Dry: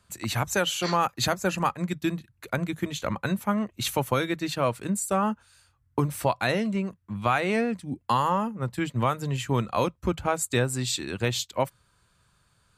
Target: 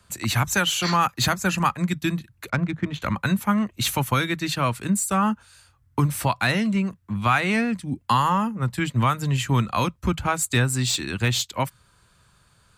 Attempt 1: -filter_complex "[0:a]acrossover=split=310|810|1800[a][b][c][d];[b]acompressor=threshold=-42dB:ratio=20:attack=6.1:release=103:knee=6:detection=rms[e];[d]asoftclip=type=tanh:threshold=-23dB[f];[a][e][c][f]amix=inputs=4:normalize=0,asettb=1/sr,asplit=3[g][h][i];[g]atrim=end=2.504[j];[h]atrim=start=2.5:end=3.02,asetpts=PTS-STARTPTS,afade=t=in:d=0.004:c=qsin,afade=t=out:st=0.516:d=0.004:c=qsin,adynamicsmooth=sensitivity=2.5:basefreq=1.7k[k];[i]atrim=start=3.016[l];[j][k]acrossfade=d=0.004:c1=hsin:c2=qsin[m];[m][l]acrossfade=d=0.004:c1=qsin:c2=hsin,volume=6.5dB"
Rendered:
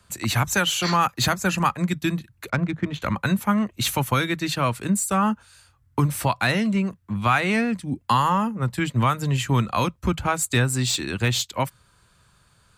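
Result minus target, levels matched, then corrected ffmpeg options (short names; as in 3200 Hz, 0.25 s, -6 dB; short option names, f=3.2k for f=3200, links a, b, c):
compressor: peak gain reduction -7 dB
-filter_complex "[0:a]acrossover=split=310|810|1800[a][b][c][d];[b]acompressor=threshold=-49.5dB:ratio=20:attack=6.1:release=103:knee=6:detection=rms[e];[d]asoftclip=type=tanh:threshold=-23dB[f];[a][e][c][f]amix=inputs=4:normalize=0,asettb=1/sr,asplit=3[g][h][i];[g]atrim=end=2.504[j];[h]atrim=start=2.5:end=3.02,asetpts=PTS-STARTPTS,afade=t=in:d=0.004:c=qsin,afade=t=out:st=0.516:d=0.004:c=qsin,adynamicsmooth=sensitivity=2.5:basefreq=1.7k[k];[i]atrim=start=3.016[l];[j][k]acrossfade=d=0.004:c1=hsin:c2=qsin[m];[m][l]acrossfade=d=0.004:c1=qsin:c2=hsin,volume=6.5dB"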